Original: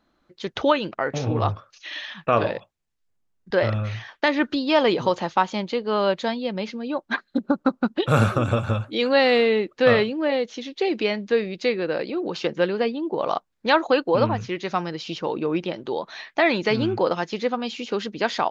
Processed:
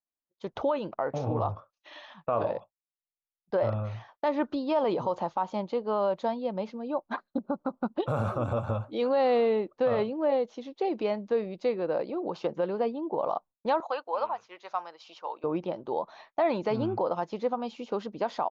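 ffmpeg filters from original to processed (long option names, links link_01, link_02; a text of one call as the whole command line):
ffmpeg -i in.wav -filter_complex "[0:a]asettb=1/sr,asplit=3[link_01][link_02][link_03];[link_01]atrim=end=13.804[link_04];[link_02]atrim=start=13.8:end=15.44,asetpts=PTS-STARTPTS,afade=type=in:duration=0.004:curve=qsin,afade=type=out:start_time=1.636:duration=0.004:curve=qsin,highpass=930[link_05];[link_03]atrim=start=15.436[link_06];[link_04][link_05]acrossfade=duration=0.004:curve1=hsin:curve2=qsin[link_07];[link_07][link_06]acrossfade=duration=0.004:curve1=qsin:curve2=hsin,agate=range=-33dB:threshold=-35dB:ratio=3:detection=peak,firequalizer=gain_entry='entry(400,0);entry(590,6);entry(980,6);entry(1700,-9)':delay=0.05:min_phase=1,alimiter=limit=-11.5dB:level=0:latency=1:release=59,volume=-6.5dB" out.wav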